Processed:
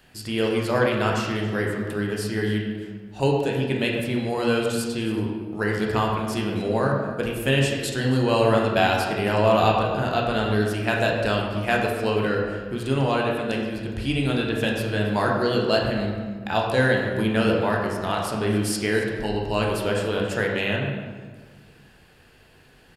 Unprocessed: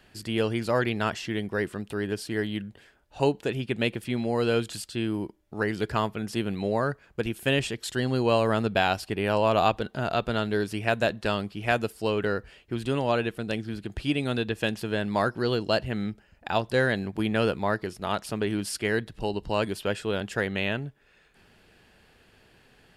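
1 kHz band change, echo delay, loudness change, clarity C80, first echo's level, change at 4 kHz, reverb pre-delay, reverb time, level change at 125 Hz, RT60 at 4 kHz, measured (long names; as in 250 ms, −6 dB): +4.0 dB, 277 ms, +4.5 dB, 4.0 dB, −16.5 dB, +4.0 dB, 13 ms, 1.5 s, +6.0 dB, 0.95 s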